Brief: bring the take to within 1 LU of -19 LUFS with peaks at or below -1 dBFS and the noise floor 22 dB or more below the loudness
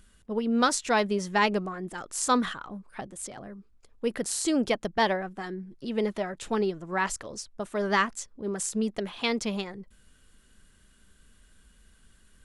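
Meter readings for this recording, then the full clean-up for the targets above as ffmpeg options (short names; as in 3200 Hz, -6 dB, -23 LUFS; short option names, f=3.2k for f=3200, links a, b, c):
loudness -29.0 LUFS; peak -10.0 dBFS; loudness target -19.0 LUFS
-> -af "volume=10dB,alimiter=limit=-1dB:level=0:latency=1"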